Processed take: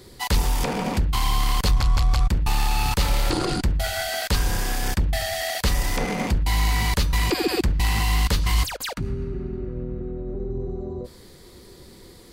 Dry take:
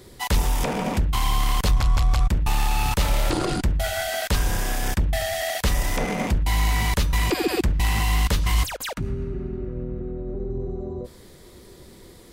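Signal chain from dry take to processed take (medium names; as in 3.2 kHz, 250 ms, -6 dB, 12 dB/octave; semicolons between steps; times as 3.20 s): peaking EQ 4.5 kHz +6 dB 0.26 oct; band-stop 620 Hz, Q 12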